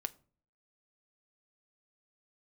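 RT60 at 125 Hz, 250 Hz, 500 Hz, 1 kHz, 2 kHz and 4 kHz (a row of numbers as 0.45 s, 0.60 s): 0.65 s, 0.60 s, 0.50 s, 0.40 s, 0.30 s, 0.25 s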